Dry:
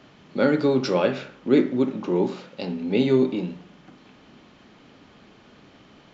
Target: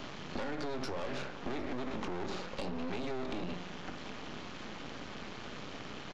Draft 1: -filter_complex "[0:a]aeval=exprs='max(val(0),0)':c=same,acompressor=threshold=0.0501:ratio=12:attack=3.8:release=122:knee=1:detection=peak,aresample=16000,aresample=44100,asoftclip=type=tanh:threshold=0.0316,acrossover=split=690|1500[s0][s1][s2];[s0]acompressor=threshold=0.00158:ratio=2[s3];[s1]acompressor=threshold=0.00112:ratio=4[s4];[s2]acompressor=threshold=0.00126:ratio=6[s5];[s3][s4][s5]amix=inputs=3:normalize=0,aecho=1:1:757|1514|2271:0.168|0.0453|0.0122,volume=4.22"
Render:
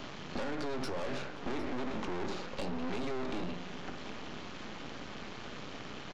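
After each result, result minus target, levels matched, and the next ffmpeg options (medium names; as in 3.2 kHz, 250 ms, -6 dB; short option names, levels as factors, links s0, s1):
compression: peak gain reduction -5.5 dB; echo-to-direct +7 dB
-filter_complex "[0:a]aeval=exprs='max(val(0),0)':c=same,acompressor=threshold=0.0251:ratio=12:attack=3.8:release=122:knee=1:detection=peak,aresample=16000,aresample=44100,asoftclip=type=tanh:threshold=0.0316,acrossover=split=690|1500[s0][s1][s2];[s0]acompressor=threshold=0.00158:ratio=2[s3];[s1]acompressor=threshold=0.00112:ratio=4[s4];[s2]acompressor=threshold=0.00126:ratio=6[s5];[s3][s4][s5]amix=inputs=3:normalize=0,aecho=1:1:757|1514|2271:0.168|0.0453|0.0122,volume=4.22"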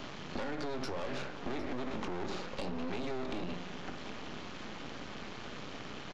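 echo-to-direct +7 dB
-filter_complex "[0:a]aeval=exprs='max(val(0),0)':c=same,acompressor=threshold=0.0251:ratio=12:attack=3.8:release=122:knee=1:detection=peak,aresample=16000,aresample=44100,asoftclip=type=tanh:threshold=0.0316,acrossover=split=690|1500[s0][s1][s2];[s0]acompressor=threshold=0.00158:ratio=2[s3];[s1]acompressor=threshold=0.00112:ratio=4[s4];[s2]acompressor=threshold=0.00126:ratio=6[s5];[s3][s4][s5]amix=inputs=3:normalize=0,aecho=1:1:757|1514:0.075|0.0202,volume=4.22"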